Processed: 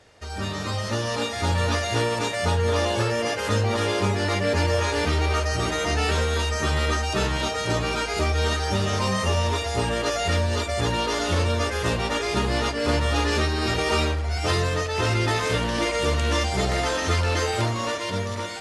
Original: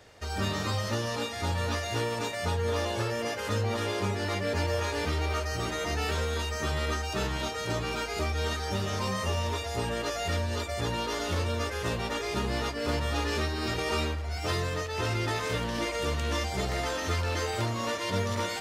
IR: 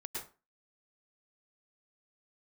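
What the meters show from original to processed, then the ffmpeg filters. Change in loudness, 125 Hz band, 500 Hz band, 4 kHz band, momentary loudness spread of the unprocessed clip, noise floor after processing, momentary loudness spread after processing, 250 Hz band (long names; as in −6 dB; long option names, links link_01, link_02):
+6.5 dB, +6.5 dB, +6.5 dB, +6.5 dB, 2 LU, −30 dBFS, 3 LU, +6.5 dB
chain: -filter_complex "[0:a]dynaudnorm=framelen=170:gausssize=11:maxgain=7dB,asplit=2[link_01][link_02];[1:a]atrim=start_sample=2205,asetrate=74970,aresample=44100[link_03];[link_02][link_03]afir=irnorm=-1:irlink=0,volume=-10dB[link_04];[link_01][link_04]amix=inputs=2:normalize=0,volume=-1dB" -ar 44100 -c:a mp2 -b:a 96k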